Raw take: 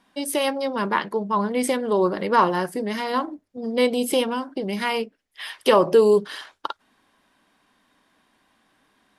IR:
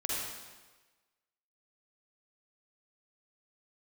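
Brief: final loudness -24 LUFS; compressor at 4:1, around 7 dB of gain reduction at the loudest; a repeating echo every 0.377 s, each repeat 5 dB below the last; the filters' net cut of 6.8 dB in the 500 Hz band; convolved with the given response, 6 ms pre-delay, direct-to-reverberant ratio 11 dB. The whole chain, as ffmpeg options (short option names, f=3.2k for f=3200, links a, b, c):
-filter_complex "[0:a]equalizer=f=500:t=o:g=-8,acompressor=threshold=-23dB:ratio=4,aecho=1:1:377|754|1131|1508|1885|2262|2639:0.562|0.315|0.176|0.0988|0.0553|0.031|0.0173,asplit=2[a][b];[1:a]atrim=start_sample=2205,adelay=6[c];[b][c]afir=irnorm=-1:irlink=0,volume=-16.5dB[d];[a][d]amix=inputs=2:normalize=0,volume=3.5dB"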